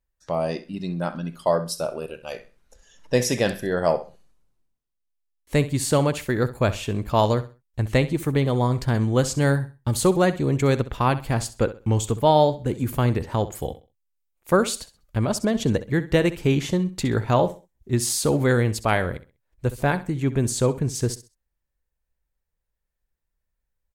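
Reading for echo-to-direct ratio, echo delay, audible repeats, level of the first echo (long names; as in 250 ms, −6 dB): −14.5 dB, 65 ms, 2, −15.0 dB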